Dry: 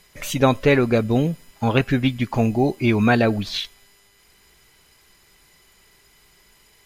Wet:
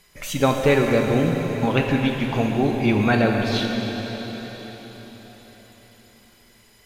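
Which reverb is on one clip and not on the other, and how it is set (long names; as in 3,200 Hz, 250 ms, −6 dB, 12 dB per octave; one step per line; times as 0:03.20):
dense smooth reverb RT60 4.9 s, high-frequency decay 1×, DRR 1 dB
level −2.5 dB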